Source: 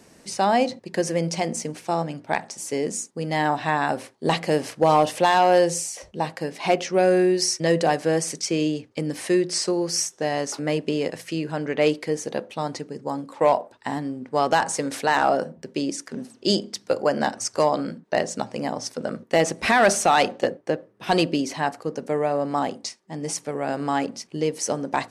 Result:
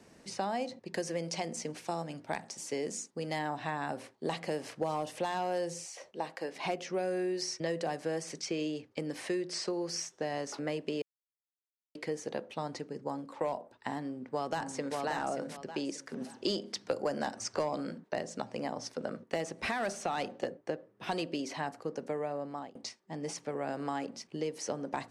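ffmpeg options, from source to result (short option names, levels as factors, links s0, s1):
-filter_complex "[0:a]asettb=1/sr,asplit=3[s0][s1][s2];[s0]atrim=end=0.944[s3];[s1]atrim=start=0.94:end=3.39,asetpts=PTS-STARTPTS,afade=t=in:d=0.004:c=qsin,afade=t=out:st=2.446:d=0.004:c=qsin,aemphasis=mode=production:type=cd[s4];[s2]atrim=start=3.386[s5];[s3][s4]acrossfade=d=0.004:c1=hsin:c2=qsin[s6];[s6][s5]acrossfade=d=0.004:c1=qsin:c2=hsin,asettb=1/sr,asplit=3[s7][s8][s9];[s7]atrim=end=5.854[s10];[s8]atrim=start=5.85:end=6.56,asetpts=PTS-STARTPTS,afade=t=in:d=0.004:c=qsin,afade=t=out:st=0.706:d=0.004:c=qsin,highpass=350[s11];[s9]atrim=start=6.556[s12];[s10][s11]acrossfade=d=0.004:c1=hsin:c2=qsin[s13];[s13][s12]acrossfade=d=0.004:c1=qsin:c2=hsin,asplit=2[s14][s15];[s15]afade=t=in:st=13.98:d=0.01,afade=t=out:st=14.98:d=0.01,aecho=0:1:580|1160|1740:0.562341|0.0843512|0.0126527[s16];[s14][s16]amix=inputs=2:normalize=0,asplit=3[s17][s18][s19];[s17]afade=t=out:st=16.2:d=0.02[s20];[s18]acontrast=80,afade=t=in:st=16.2:d=0.02,afade=t=out:st=18.07:d=0.02[s21];[s19]afade=t=in:st=18.07:d=0.02[s22];[s20][s21][s22]amix=inputs=3:normalize=0,asplit=4[s23][s24][s25][s26];[s23]atrim=end=11.02,asetpts=PTS-STARTPTS,afade=t=out:st=11.016:d=0.004:c=hsin[s27];[s24]atrim=start=11.02:end=11.95,asetpts=PTS-STARTPTS,volume=0[s28];[s25]atrim=start=11.95:end=22.75,asetpts=PTS-STARTPTS,afade=t=in:d=0.004:c=hsin,afade=t=out:st=10.06:d=0.74:silence=0.0749894[s29];[s26]atrim=start=22.75,asetpts=PTS-STARTPTS,afade=t=in:d=0.004:c=hsin:silence=0.0749894[s30];[s27][s28][s29][s30]concat=n=4:v=0:a=1,highshelf=f=7400:g=-9.5,acrossover=split=330|6200[s31][s32][s33];[s31]acompressor=threshold=0.0141:ratio=4[s34];[s32]acompressor=threshold=0.0398:ratio=4[s35];[s33]acompressor=threshold=0.00562:ratio=4[s36];[s34][s35][s36]amix=inputs=3:normalize=0,volume=0.531"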